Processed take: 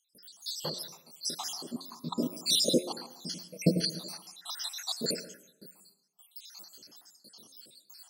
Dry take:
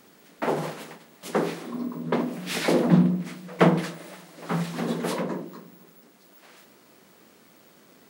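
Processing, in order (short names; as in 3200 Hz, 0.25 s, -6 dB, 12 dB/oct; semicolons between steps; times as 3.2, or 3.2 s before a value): random spectral dropouts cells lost 79%; de-hum 89.97 Hz, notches 15; gate with hold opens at -56 dBFS; resonant high shelf 3100 Hz +12.5 dB, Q 3; digital reverb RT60 0.72 s, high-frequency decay 0.4×, pre-delay 70 ms, DRR 15 dB; gain -2 dB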